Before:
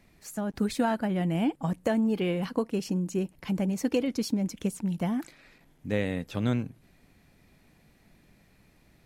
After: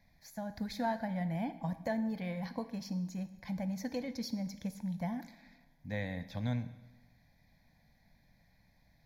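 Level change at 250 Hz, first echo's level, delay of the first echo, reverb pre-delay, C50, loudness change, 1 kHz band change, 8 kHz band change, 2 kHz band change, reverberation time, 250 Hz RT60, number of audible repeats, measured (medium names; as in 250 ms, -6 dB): -9.0 dB, no echo, no echo, 6 ms, 13.5 dB, -9.0 dB, -5.5 dB, -11.5 dB, -6.5 dB, 1.1 s, 1.0 s, no echo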